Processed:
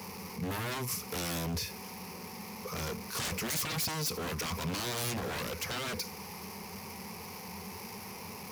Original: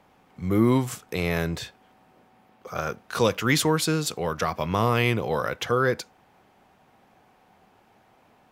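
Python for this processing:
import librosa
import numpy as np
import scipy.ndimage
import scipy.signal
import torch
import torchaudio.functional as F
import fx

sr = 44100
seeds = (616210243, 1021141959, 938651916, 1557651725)

y = x + 0.5 * 10.0 ** (-34.5 / 20.0) * np.sign(x)
y = fx.ripple_eq(y, sr, per_octave=0.84, db=12)
y = 10.0 ** (-24.0 / 20.0) * (np.abs((y / 10.0 ** (-24.0 / 20.0) + 3.0) % 4.0 - 2.0) - 1.0)
y = scipy.signal.sosfilt(scipy.signal.butter(2, 81.0, 'highpass', fs=sr, output='sos'), y)
y = fx.bass_treble(y, sr, bass_db=7, treble_db=7)
y = F.gain(torch.from_numpy(y), -8.5).numpy()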